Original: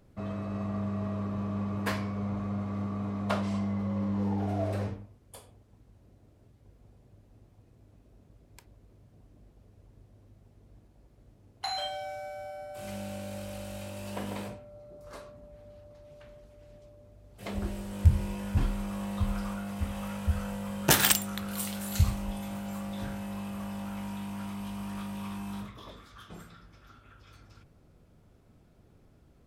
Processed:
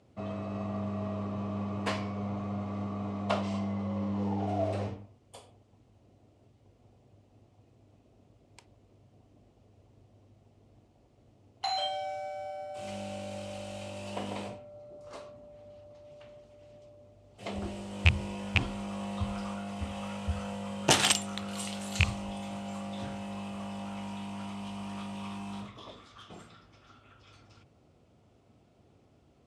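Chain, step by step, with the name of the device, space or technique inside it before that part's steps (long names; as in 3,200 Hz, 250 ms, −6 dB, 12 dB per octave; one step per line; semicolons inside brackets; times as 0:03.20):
car door speaker with a rattle (loose part that buzzes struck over −18 dBFS, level −9 dBFS; loudspeaker in its box 95–8,600 Hz, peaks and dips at 170 Hz −6 dB, 720 Hz +4 dB, 1,600 Hz −6 dB, 2,900 Hz +4 dB)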